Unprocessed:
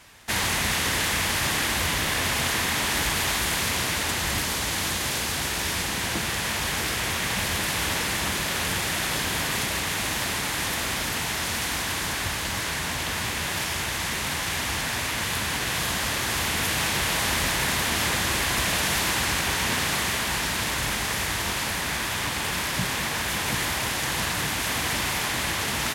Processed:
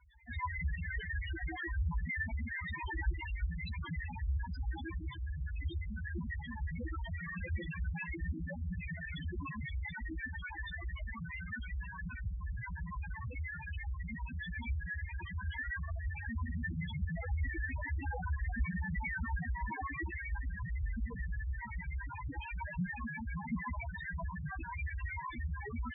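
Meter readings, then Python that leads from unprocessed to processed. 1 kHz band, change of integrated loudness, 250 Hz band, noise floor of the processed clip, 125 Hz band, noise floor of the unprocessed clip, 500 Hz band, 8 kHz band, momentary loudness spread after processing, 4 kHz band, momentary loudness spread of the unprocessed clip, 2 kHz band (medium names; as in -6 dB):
-17.0 dB, -15.5 dB, -10.5 dB, -45 dBFS, -5.0 dB, -29 dBFS, -20.5 dB, under -40 dB, 5 LU, -31.0 dB, 3 LU, -15.0 dB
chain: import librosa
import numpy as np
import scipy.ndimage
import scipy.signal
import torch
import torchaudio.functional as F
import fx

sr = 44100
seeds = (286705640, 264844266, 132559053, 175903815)

y = fx.chorus_voices(x, sr, voices=6, hz=0.11, base_ms=15, depth_ms=3.2, mix_pct=45)
y = fx.spec_topn(y, sr, count=2)
y = y * librosa.db_to_amplitude(3.0)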